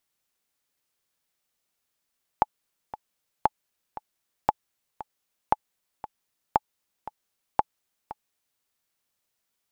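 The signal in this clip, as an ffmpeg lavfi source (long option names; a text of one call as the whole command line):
ffmpeg -f lavfi -i "aevalsrc='pow(10,(-5.5-16.5*gte(mod(t,2*60/116),60/116))/20)*sin(2*PI*855*mod(t,60/116))*exp(-6.91*mod(t,60/116)/0.03)':duration=6.2:sample_rate=44100" out.wav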